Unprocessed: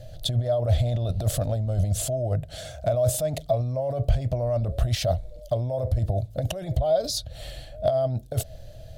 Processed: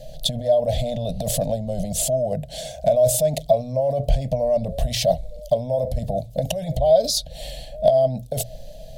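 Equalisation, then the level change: hum notches 60/120 Hz; static phaser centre 350 Hz, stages 6; +7.0 dB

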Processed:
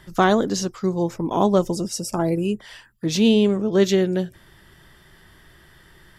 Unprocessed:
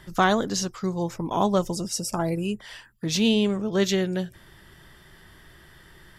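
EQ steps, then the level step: dynamic bell 340 Hz, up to +7 dB, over -36 dBFS, Q 0.72; 0.0 dB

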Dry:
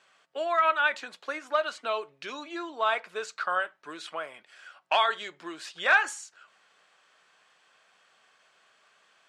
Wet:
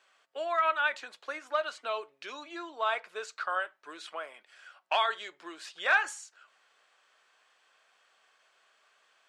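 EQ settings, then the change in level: high-pass 330 Hz 12 dB/octave; -3.5 dB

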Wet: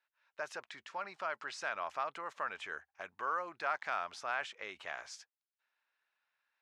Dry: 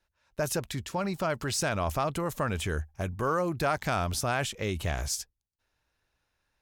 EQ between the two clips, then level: high-pass 1.5 kHz 12 dB/octave; dynamic bell 3.3 kHz, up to -5 dB, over -49 dBFS, Q 0.88; tape spacing loss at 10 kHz 35 dB; +6.0 dB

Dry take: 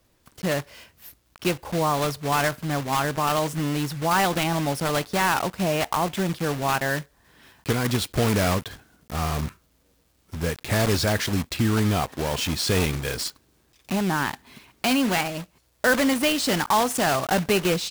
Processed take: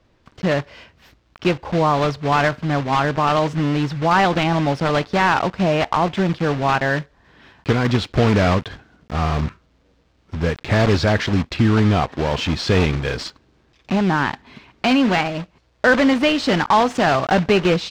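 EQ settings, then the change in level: distance through air 170 m; +6.5 dB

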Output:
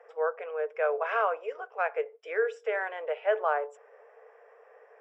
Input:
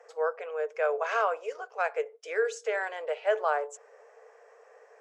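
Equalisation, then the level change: Savitzky-Golay filter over 25 samples; 0.0 dB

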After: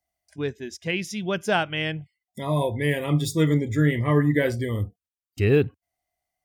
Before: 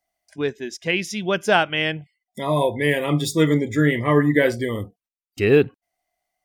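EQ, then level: peaking EQ 80 Hz +14 dB 1.7 oct; treble shelf 6.8 kHz +4 dB; -6.0 dB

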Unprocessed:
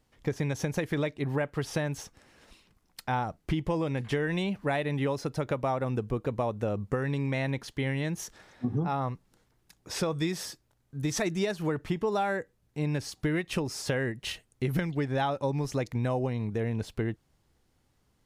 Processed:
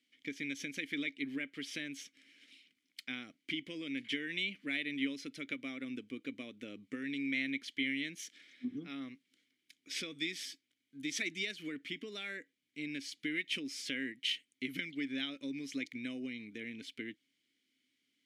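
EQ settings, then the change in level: vowel filter i; tilt EQ +4.5 dB/octave; +6.5 dB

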